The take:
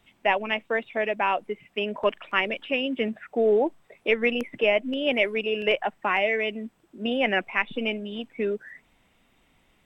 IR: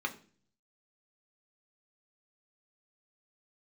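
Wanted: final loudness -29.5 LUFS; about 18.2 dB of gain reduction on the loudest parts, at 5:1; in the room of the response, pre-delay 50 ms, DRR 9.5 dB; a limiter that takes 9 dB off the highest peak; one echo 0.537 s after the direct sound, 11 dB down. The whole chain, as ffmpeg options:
-filter_complex "[0:a]acompressor=threshold=-39dB:ratio=5,alimiter=level_in=8dB:limit=-24dB:level=0:latency=1,volume=-8dB,aecho=1:1:537:0.282,asplit=2[a][b];[1:a]atrim=start_sample=2205,adelay=50[c];[b][c]afir=irnorm=-1:irlink=0,volume=-14.5dB[d];[a][d]amix=inputs=2:normalize=0,volume=13dB"

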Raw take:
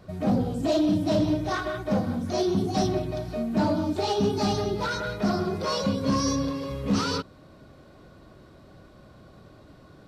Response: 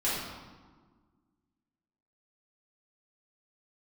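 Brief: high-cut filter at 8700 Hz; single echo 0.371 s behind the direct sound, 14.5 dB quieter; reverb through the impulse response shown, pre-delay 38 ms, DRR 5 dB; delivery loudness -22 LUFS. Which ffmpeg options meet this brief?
-filter_complex "[0:a]lowpass=8.7k,aecho=1:1:371:0.188,asplit=2[a][b];[1:a]atrim=start_sample=2205,adelay=38[c];[b][c]afir=irnorm=-1:irlink=0,volume=-14.5dB[d];[a][d]amix=inputs=2:normalize=0,volume=2.5dB"

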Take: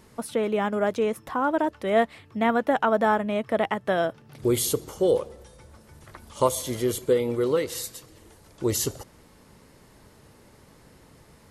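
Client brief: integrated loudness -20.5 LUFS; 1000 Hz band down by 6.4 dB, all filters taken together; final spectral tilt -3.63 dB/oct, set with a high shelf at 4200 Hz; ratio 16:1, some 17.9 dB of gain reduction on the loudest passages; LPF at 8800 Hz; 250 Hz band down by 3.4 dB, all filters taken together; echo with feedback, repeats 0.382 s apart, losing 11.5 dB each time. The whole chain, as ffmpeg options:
-af "lowpass=8.8k,equalizer=f=250:t=o:g=-4,equalizer=f=1k:t=o:g=-9,highshelf=f=4.2k:g=6.5,acompressor=threshold=-37dB:ratio=16,aecho=1:1:382|764|1146:0.266|0.0718|0.0194,volume=21.5dB"

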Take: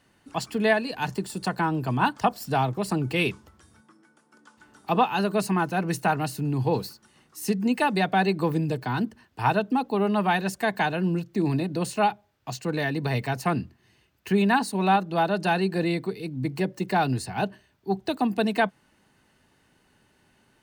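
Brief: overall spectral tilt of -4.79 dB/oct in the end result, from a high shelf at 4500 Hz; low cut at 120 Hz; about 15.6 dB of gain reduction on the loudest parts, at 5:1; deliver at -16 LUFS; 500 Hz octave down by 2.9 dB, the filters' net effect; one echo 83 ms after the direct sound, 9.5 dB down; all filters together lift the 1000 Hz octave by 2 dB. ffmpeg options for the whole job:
-af "highpass=120,equalizer=f=500:t=o:g=-6,equalizer=f=1k:t=o:g=5,highshelf=f=4.5k:g=3,acompressor=threshold=-33dB:ratio=5,aecho=1:1:83:0.335,volume=20dB"

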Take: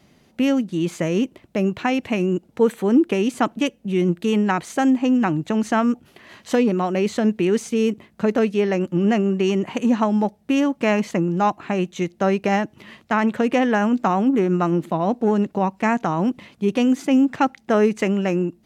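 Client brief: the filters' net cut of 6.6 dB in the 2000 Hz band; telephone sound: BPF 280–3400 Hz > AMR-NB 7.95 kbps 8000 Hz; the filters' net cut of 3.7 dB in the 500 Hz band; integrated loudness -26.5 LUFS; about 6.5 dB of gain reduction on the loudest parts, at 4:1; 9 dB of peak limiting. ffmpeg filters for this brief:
-af "equalizer=f=500:t=o:g=-3.5,equalizer=f=2k:t=o:g=-8,acompressor=threshold=-21dB:ratio=4,alimiter=limit=-21dB:level=0:latency=1,highpass=280,lowpass=3.4k,volume=7dB" -ar 8000 -c:a libopencore_amrnb -b:a 7950

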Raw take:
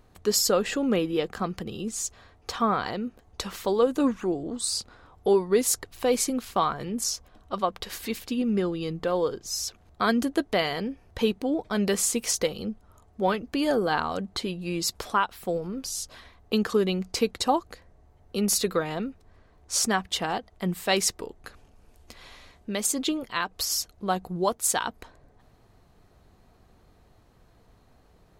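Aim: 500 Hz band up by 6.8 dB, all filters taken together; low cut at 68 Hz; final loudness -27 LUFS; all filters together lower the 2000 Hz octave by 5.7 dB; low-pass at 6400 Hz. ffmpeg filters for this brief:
-af "highpass=68,lowpass=6.4k,equalizer=f=500:t=o:g=8.5,equalizer=f=2k:t=o:g=-8.5,volume=-3dB"

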